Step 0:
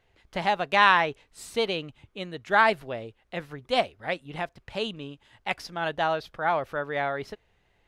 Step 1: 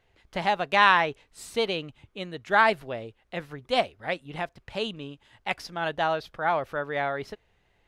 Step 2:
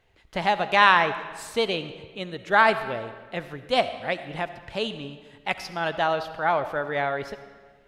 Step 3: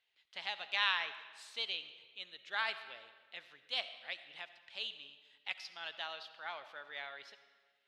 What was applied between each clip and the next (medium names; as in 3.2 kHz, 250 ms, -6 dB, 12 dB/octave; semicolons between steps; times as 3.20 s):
no audible change
algorithmic reverb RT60 1.5 s, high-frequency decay 0.8×, pre-delay 30 ms, DRR 11.5 dB; trim +2 dB
band-pass filter 3.6 kHz, Q 1.7; trim -6 dB